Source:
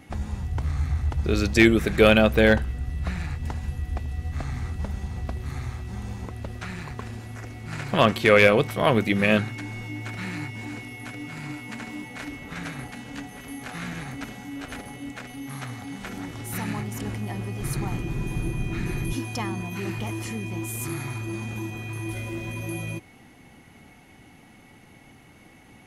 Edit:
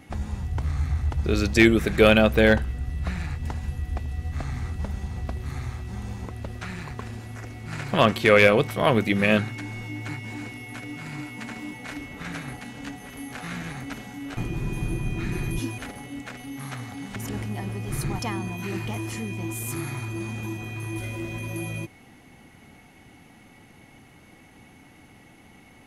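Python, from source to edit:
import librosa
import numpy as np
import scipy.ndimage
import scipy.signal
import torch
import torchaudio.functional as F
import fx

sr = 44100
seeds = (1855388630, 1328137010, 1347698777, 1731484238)

y = fx.edit(x, sr, fx.cut(start_s=10.09, length_s=0.31),
    fx.cut(start_s=16.06, length_s=0.82),
    fx.move(start_s=17.91, length_s=1.41, to_s=14.68), tone=tone)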